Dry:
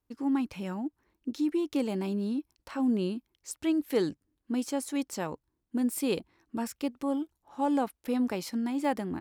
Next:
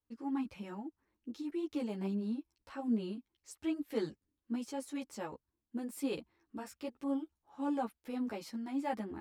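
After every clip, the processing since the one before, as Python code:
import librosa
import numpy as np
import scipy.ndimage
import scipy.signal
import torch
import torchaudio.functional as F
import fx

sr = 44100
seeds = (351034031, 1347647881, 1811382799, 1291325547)

y = fx.high_shelf(x, sr, hz=6000.0, db=-6.0)
y = fx.ensemble(y, sr)
y = y * librosa.db_to_amplitude(-4.5)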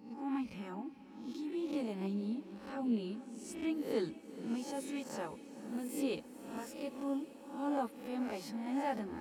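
y = fx.spec_swells(x, sr, rise_s=0.59)
y = fx.echo_diffused(y, sr, ms=455, feedback_pct=72, wet_db=-15)
y = y * librosa.db_to_amplitude(-1.5)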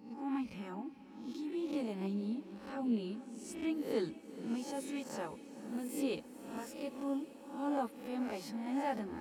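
y = x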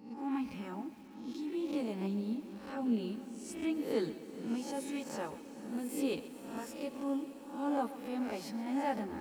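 y = fx.echo_crushed(x, sr, ms=130, feedback_pct=55, bits=9, wet_db=-15.0)
y = y * librosa.db_to_amplitude(1.5)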